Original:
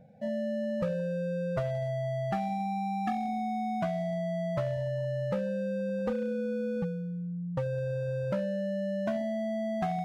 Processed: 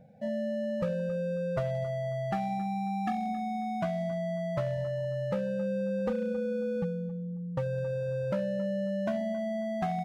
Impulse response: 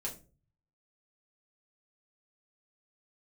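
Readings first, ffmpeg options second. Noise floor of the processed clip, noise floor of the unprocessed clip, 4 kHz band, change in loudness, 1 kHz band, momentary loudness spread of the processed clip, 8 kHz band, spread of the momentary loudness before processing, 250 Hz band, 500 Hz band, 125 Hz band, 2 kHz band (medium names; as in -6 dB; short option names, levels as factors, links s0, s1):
-36 dBFS, -35 dBFS, 0.0 dB, 0.0 dB, -0.5 dB, 2 LU, no reading, 1 LU, 0.0 dB, +0.5 dB, -0.5 dB, 0.0 dB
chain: -filter_complex "[0:a]asplit=2[s0][s1];[s1]adelay=271,lowpass=f=1200:p=1,volume=0.224,asplit=2[s2][s3];[s3]adelay=271,lowpass=f=1200:p=1,volume=0.38,asplit=2[s4][s5];[s5]adelay=271,lowpass=f=1200:p=1,volume=0.38,asplit=2[s6][s7];[s7]adelay=271,lowpass=f=1200:p=1,volume=0.38[s8];[s0][s2][s4][s6][s8]amix=inputs=5:normalize=0"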